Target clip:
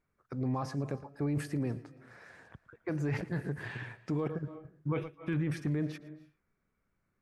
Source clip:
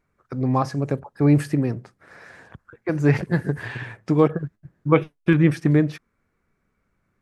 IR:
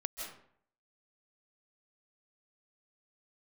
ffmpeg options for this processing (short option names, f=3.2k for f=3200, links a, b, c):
-filter_complex "[0:a]asplit=2[a][b];[1:a]atrim=start_sample=2205,afade=t=out:st=0.38:d=0.01,atrim=end_sample=17199,adelay=114[c];[b][c]afir=irnorm=-1:irlink=0,volume=-18.5dB[d];[a][d]amix=inputs=2:normalize=0,alimiter=limit=-15.5dB:level=0:latency=1:release=11,volume=-9dB"